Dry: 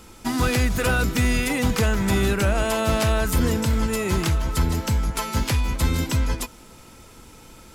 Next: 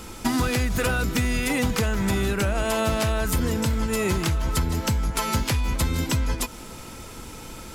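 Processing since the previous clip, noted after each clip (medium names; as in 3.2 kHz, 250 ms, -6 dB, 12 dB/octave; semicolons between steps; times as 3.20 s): compression 10:1, threshold -27 dBFS, peak gain reduction 11.5 dB; trim +7 dB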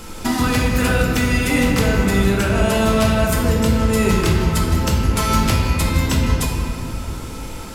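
reverberation RT60 2.6 s, pre-delay 7 ms, DRR -1.5 dB; trim +2.5 dB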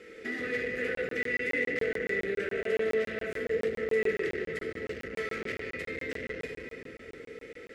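overload inside the chain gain 16.5 dB; two resonant band-passes 930 Hz, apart 2.1 oct; crackling interface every 0.14 s, samples 1024, zero, from 0.95 s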